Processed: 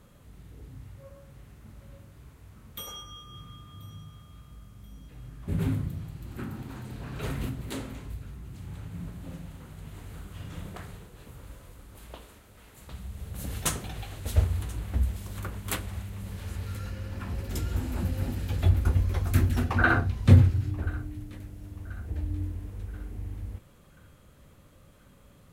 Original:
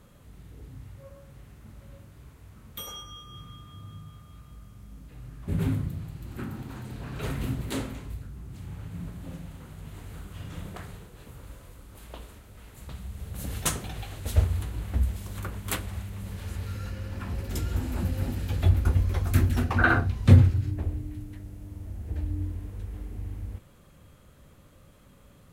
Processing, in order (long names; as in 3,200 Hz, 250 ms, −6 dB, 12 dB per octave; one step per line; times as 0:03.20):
0:07.48–0:08.08: downward compressor 2 to 1, threshold −33 dBFS, peak gain reduction 4.5 dB
0:12.15–0:12.92: low-shelf EQ 160 Hz −7.5 dB
feedback echo with a high-pass in the loop 1,033 ms, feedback 52%, high-pass 830 Hz, level −20.5 dB
level −1 dB